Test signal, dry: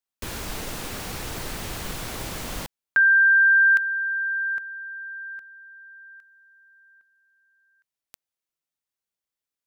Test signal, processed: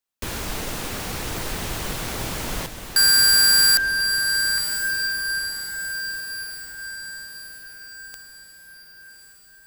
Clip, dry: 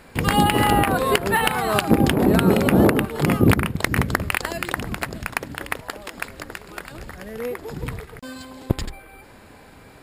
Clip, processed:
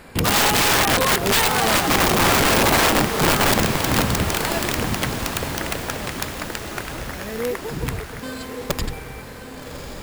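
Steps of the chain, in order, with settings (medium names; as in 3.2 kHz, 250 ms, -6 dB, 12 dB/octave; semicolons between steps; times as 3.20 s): integer overflow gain 15.5 dB; echo that smears into a reverb 1134 ms, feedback 51%, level -8 dB; trim +3.5 dB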